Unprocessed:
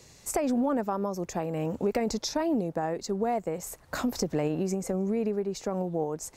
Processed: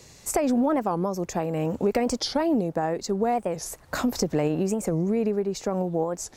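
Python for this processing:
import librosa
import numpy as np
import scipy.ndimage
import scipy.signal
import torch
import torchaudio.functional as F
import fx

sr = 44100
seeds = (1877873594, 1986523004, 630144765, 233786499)

y = fx.record_warp(x, sr, rpm=45.0, depth_cents=250.0)
y = y * librosa.db_to_amplitude(4.0)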